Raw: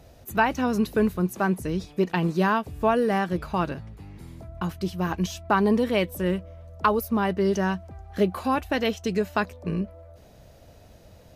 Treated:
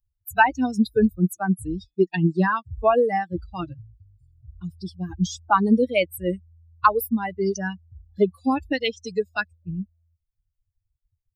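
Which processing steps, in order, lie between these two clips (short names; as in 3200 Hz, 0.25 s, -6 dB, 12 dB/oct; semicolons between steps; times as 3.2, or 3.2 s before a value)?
per-bin expansion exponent 3; gain +8.5 dB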